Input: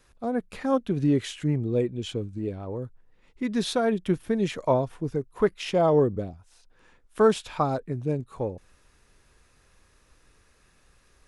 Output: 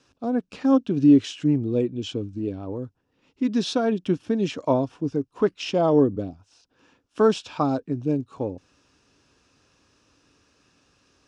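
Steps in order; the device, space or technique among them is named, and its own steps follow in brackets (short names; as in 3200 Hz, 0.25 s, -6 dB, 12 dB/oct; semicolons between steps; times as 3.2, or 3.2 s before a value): car door speaker (speaker cabinet 98–7400 Hz, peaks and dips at 99 Hz +3 dB, 280 Hz +10 dB, 2000 Hz -8 dB, 2800 Hz +5 dB, 5400 Hz +6 dB)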